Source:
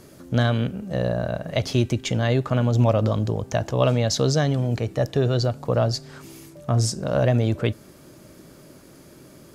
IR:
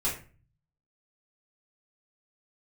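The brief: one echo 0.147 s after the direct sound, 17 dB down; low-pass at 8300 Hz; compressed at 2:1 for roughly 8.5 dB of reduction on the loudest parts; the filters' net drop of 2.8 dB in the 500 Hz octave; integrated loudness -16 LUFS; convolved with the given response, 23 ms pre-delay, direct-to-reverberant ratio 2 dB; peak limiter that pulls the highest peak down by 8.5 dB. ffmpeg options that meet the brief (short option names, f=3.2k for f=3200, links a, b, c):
-filter_complex "[0:a]lowpass=8.3k,equalizer=f=500:t=o:g=-3.5,acompressor=threshold=-31dB:ratio=2,alimiter=limit=-22dB:level=0:latency=1,aecho=1:1:147:0.141,asplit=2[a][b];[1:a]atrim=start_sample=2205,adelay=23[c];[b][c]afir=irnorm=-1:irlink=0,volume=-9dB[d];[a][d]amix=inputs=2:normalize=0,volume=14.5dB"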